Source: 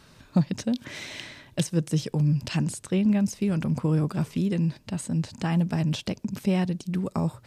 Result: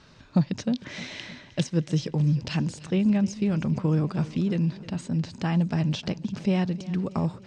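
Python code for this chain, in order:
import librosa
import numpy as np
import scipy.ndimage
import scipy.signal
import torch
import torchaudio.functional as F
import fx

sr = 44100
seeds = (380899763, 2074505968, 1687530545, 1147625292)

p1 = scipy.signal.sosfilt(scipy.signal.butter(4, 6400.0, 'lowpass', fs=sr, output='sos'), x)
y = p1 + fx.echo_feedback(p1, sr, ms=308, feedback_pct=57, wet_db=-18, dry=0)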